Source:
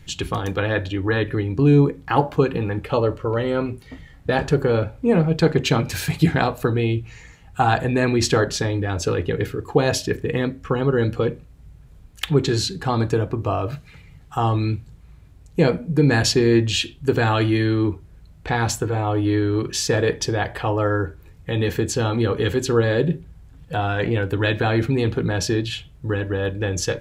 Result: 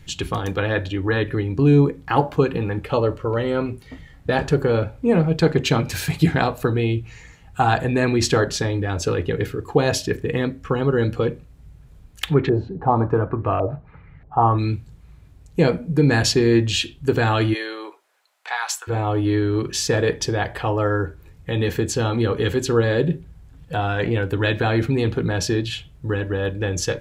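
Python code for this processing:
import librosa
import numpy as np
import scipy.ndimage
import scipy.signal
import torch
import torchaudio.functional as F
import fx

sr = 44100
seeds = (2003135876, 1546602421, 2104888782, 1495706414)

y = fx.filter_lfo_lowpass(x, sr, shape='saw_up', hz=fx.line((12.34, 0.56), (14.57, 2.4)), low_hz=610.0, high_hz=2100.0, q=2.4, at=(12.34, 14.57), fade=0.02)
y = fx.highpass(y, sr, hz=fx.line((17.53, 440.0), (18.87, 1000.0)), slope=24, at=(17.53, 18.87), fade=0.02)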